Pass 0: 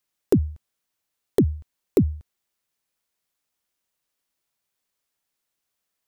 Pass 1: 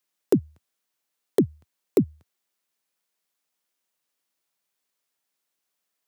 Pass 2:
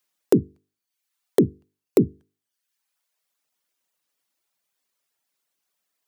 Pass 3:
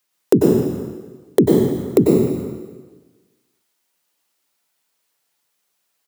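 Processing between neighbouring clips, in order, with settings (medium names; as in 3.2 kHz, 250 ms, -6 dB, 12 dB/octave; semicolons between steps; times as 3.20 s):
Bessel high-pass 180 Hz, order 8
hum notches 50/100/150/200/250/300/350/400/450 Hz; reverb removal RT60 0.88 s; trim +4 dB
speakerphone echo 300 ms, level -19 dB; plate-style reverb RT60 1.3 s, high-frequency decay 1×, pre-delay 85 ms, DRR -2.5 dB; trim +3.5 dB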